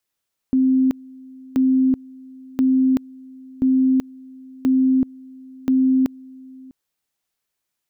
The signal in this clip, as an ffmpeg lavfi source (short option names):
-f lavfi -i "aevalsrc='pow(10,(-13-24.5*gte(mod(t,1.03),0.38))/20)*sin(2*PI*261*t)':d=6.18:s=44100"